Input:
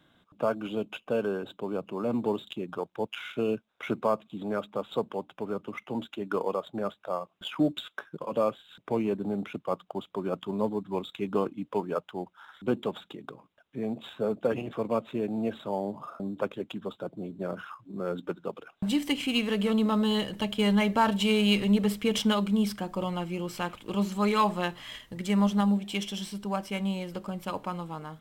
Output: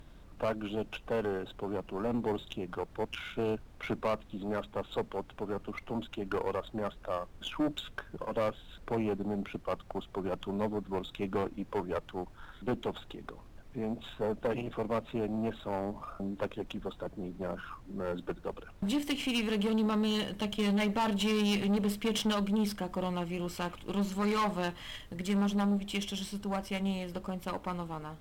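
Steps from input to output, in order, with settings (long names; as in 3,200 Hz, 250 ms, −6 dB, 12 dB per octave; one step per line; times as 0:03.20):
background noise brown −48 dBFS
tube saturation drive 25 dB, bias 0.5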